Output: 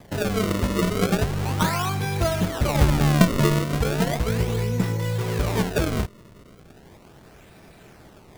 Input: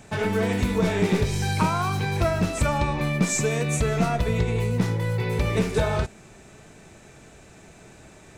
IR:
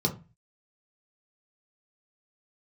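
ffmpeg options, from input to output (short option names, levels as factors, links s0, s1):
-filter_complex "[0:a]asettb=1/sr,asplit=3[s0][s1][s2];[s0]atrim=end=2.754[s3];[s1]atrim=start=2.75:end=3.59,asetpts=PTS-STARTPTS,afade=t=in:d=0.004:c=qsin,afade=t=out:st=0.836:d=0.004:c=qsin,lowshelf=f=280:g=9.5[s4];[s2]atrim=start=3.586[s5];[s3][s4]acrossfade=d=0.004:c1=hsin:c2=qsin[s6];[s6][s5]acrossfade=d=0.004:c1=qsin:c2=hsin,acrusher=samples=31:mix=1:aa=0.000001:lfo=1:lforange=49.6:lforate=0.36"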